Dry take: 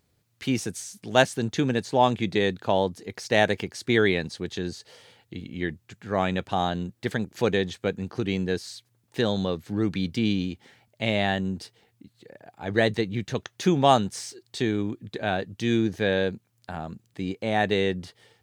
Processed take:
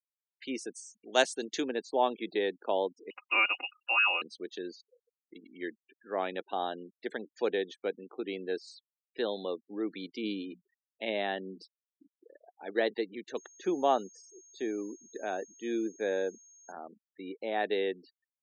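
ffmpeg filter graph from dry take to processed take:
ffmpeg -i in.wav -filter_complex "[0:a]asettb=1/sr,asplit=3[link_01][link_02][link_03];[link_01]atrim=end=1.134[link_04];[link_02]atrim=start=1.13:end=1.64,asetpts=PTS-STARTPTS,afade=type=in:duration=0.004:curve=qsin,afade=type=out:start_time=0.506:duration=0.004:curve=qsin,highshelf=frequency=3100:gain=10.5,acrossover=split=8500[link_05][link_06];[link_06]acompressor=threshold=-43dB:ratio=4:attack=1:release=60[link_07];[link_05][link_07]amix=inputs=2:normalize=0[link_08];[link_03]atrim=start=1.636[link_09];[link_04][link_08]acrossfade=duration=0.004:curve1=hsin:curve2=qsin[link_10];[link_10][link_09]acrossfade=duration=0.004:curve1=qsin:curve2=hsin,asettb=1/sr,asplit=3[link_11][link_12][link_13];[link_11]atrim=end=3.104[link_14];[link_12]atrim=start=3.1:end=4.22,asetpts=PTS-STARTPTS,afade=type=in:duration=0.004:curve=qsin,afade=type=out:start_time=1.116:duration=0.004:curve=qsin,aecho=1:1:4.5:0.85,atrim=end_sample=49392,lowpass=frequency=2600:width_type=q:width=0.5098,lowpass=frequency=2600:width_type=q:width=0.6013,lowpass=frequency=2600:width_type=q:width=0.9,lowpass=frequency=2600:width_type=q:width=2.563,afreqshift=-3000[link_15];[link_13]atrim=start=4.216[link_16];[link_14][link_15]acrossfade=duration=0.004:curve1=hsin:curve2=qsin[link_17];[link_17][link_16]acrossfade=duration=0.004:curve1=qsin:curve2=hsin,asettb=1/sr,asplit=3[link_18][link_19][link_20];[link_18]atrim=end=10.234[link_21];[link_19]atrim=start=10.23:end=12.66,asetpts=PTS-STARTPTS,afade=type=in:duration=0.004:curve=qsin,afade=type=out:start_time=2.426:duration=0.004:curve=qsin,lowshelf=frequency=130:gain=9.5,bandreject=frequency=60:width_type=h:width=6,bandreject=frequency=120:width_type=h:width=6,bandreject=frequency=180:width_type=h:width=6,bandreject=frequency=240:width_type=h:width=6[link_22];[link_20]atrim=start=12.656[link_23];[link_21][link_22]acrossfade=duration=0.004:curve1=hsin:curve2=qsin[link_24];[link_24][link_23]acrossfade=duration=0.004:curve1=qsin:curve2=hsin,asettb=1/sr,asplit=3[link_25][link_26][link_27];[link_25]atrim=end=13.374[link_28];[link_26]atrim=start=13.37:end=16.72,asetpts=PTS-STARTPTS,afade=type=in:duration=0.004:curve=qsin,afade=type=out:start_time=3.346:duration=0.004:curve=qsin,highshelf=frequency=3100:gain=-10.5,aeval=exprs='val(0)+0.00501*sin(2*PI*6500*n/s)':channel_layout=same[link_29];[link_27]atrim=start=16.716[link_30];[link_28][link_29]acrossfade=duration=0.004:curve1=hsin:curve2=qsin[link_31];[link_31][link_30]acrossfade=duration=0.004:curve1=qsin:curve2=hsin,highpass=frequency=280:width=0.5412,highpass=frequency=280:width=1.3066,afftfilt=real='re*gte(hypot(re,im),0.0141)':imag='im*gte(hypot(re,im),0.0141)':win_size=1024:overlap=0.75,adynamicequalizer=threshold=0.0141:dfrequency=420:dqfactor=0.86:tfrequency=420:tqfactor=0.86:attack=5:release=100:ratio=0.375:range=2:mode=boostabove:tftype=bell,volume=-9dB" out.wav

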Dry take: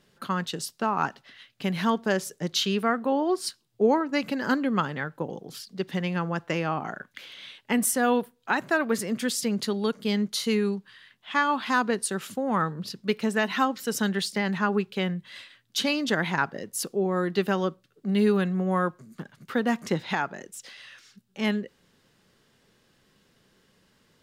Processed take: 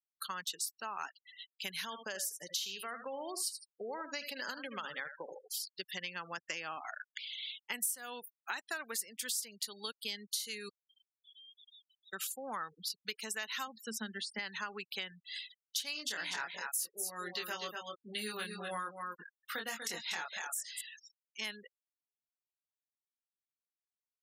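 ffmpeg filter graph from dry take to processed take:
ffmpeg -i in.wav -filter_complex "[0:a]asettb=1/sr,asplit=3[link_01][link_02][link_03];[link_01]atrim=end=1.844[link_04];[link_02]atrim=start=1.84:end=5.48,asetpts=PTS-STARTPTS,afade=type=in:duration=0.004:curve=qsin,afade=type=out:start_time=3.636:duration=0.004:curve=qsin,equalizer=frequency=560:width_type=o:width=0.34:gain=6,acompressor=threshold=-23dB:ratio=4:attack=3.2:release=140:knee=1:detection=peak,aecho=1:1:78|156|234:0.316|0.0759|0.0182,atrim=end_sample=160524[link_05];[link_03]atrim=start=5.476[link_06];[link_04][link_05]acrossfade=duration=0.004:curve1=hsin:curve2=qsin[link_07];[link_07][link_06]acrossfade=duration=0.004:curve1=qsin:curve2=hsin,asettb=1/sr,asplit=3[link_08][link_09][link_10];[link_08]atrim=end=10.694[link_11];[link_09]atrim=start=10.69:end=12.13,asetpts=PTS-STARTPTS,afade=type=in:duration=0.004:curve=qsin,afade=type=out:start_time=1.436:duration=0.004:curve=qsin,asuperpass=centerf=3400:order=8:qfactor=4.5,acompressor=threshold=-55dB:ratio=16:attack=3.2:release=140:knee=1:detection=peak[link_12];[link_10]atrim=start=12.126[link_13];[link_11][link_12]acrossfade=duration=0.004:curve1=hsin:curve2=qsin[link_14];[link_14][link_13]acrossfade=duration=0.004:curve1=qsin:curve2=hsin,asettb=1/sr,asplit=3[link_15][link_16][link_17];[link_15]atrim=end=13.674[link_18];[link_16]atrim=start=13.67:end=14.39,asetpts=PTS-STARTPTS,afade=type=in:duration=0.004:curve=qsin,afade=type=out:start_time=0.716:duration=0.004:curve=qsin,lowpass=frequency=1300:poles=1,equalizer=frequency=220:width=7.1:gain=13.5,bandreject=frequency=1000:width=15[link_19];[link_17]atrim=start=14.386[link_20];[link_18][link_19]acrossfade=duration=0.004:curve1=hsin:curve2=qsin[link_21];[link_21][link_20]acrossfade=duration=0.004:curve1=qsin:curve2=hsin,asettb=1/sr,asplit=3[link_22][link_23][link_24];[link_22]atrim=end=15.934[link_25];[link_23]atrim=start=15.93:end=20.81,asetpts=PTS-STARTPTS,afade=type=in:duration=0.004:curve=qsin,afade=type=out:start_time=4.876:duration=0.004:curve=qsin,asplit=2[link_26][link_27];[link_27]adelay=23,volume=-2.5dB[link_28];[link_26][link_28]amix=inputs=2:normalize=0,atrim=end_sample=215208,aecho=1:1:242:0.422,atrim=end_sample=215208[link_29];[link_24]atrim=start=20.806[link_30];[link_25][link_29]acrossfade=duration=0.004:curve1=hsin:curve2=qsin[link_31];[link_31][link_30]acrossfade=duration=0.004:curve1=qsin:curve2=hsin,aderivative,afftfilt=real='re*gte(hypot(re,im),0.00355)':imag='im*gte(hypot(re,im),0.00355)':win_size=1024:overlap=0.75,acompressor=threshold=-47dB:ratio=4,volume=9.5dB" out.wav

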